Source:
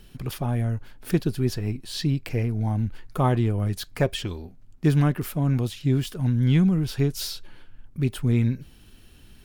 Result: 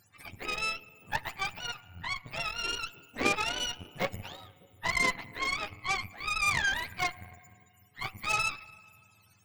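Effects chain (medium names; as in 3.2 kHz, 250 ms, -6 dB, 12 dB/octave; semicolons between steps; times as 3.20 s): spectrum inverted on a logarithmic axis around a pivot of 550 Hz; high-pass 180 Hz 6 dB/octave; bucket-brigade echo 299 ms, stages 1024, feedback 59%, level -15 dB; FDN reverb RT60 2.1 s, high-frequency decay 0.9×, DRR 14.5 dB; Chebyshev shaper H 3 -13 dB, 8 -23 dB, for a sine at -10.5 dBFS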